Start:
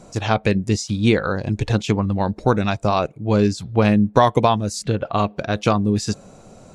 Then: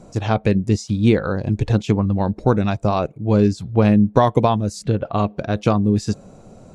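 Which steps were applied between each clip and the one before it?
tilt shelving filter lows +4 dB, about 820 Hz
level −1.5 dB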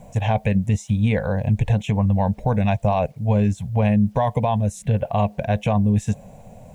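phaser with its sweep stopped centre 1,300 Hz, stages 6
bit reduction 11 bits
brickwall limiter −13.5 dBFS, peak gain reduction 8 dB
level +3.5 dB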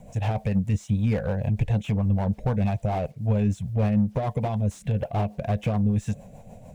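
in parallel at −4 dB: soft clipping −21.5 dBFS, distortion −9 dB
on the sum: rotating-speaker cabinet horn 6.7 Hz
slew-rate limiting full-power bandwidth 74 Hz
level −5 dB

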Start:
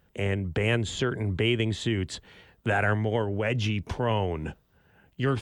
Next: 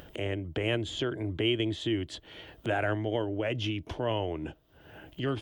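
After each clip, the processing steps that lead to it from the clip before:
thirty-one-band graphic EQ 200 Hz −7 dB, 315 Hz +12 dB, 630 Hz +8 dB, 3,150 Hz +8 dB, 8,000 Hz −5 dB
upward compression, threshold −27 dBFS
level −7 dB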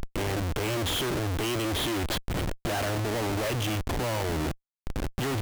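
comparator with hysteresis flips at −42 dBFS
level +4 dB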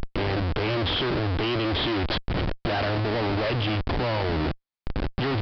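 downsampling to 11,025 Hz
level +3.5 dB

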